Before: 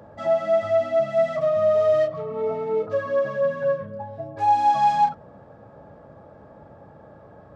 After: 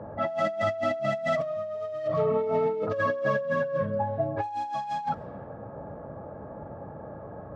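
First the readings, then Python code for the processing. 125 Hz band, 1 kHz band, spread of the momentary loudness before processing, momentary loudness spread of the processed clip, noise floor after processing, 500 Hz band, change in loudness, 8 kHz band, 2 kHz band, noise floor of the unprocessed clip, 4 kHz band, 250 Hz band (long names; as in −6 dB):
+3.0 dB, −8.5 dB, 9 LU, 15 LU, −42 dBFS, −6.0 dB, −6.5 dB, can't be measured, +2.0 dB, −48 dBFS, −2.5 dB, +2.5 dB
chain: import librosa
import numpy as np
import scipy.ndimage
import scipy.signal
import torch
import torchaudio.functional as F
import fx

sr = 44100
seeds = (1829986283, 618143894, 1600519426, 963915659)

y = fx.env_lowpass(x, sr, base_hz=1200.0, full_db=-20.0)
y = fx.over_compress(y, sr, threshold_db=-29.0, ratio=-1.0)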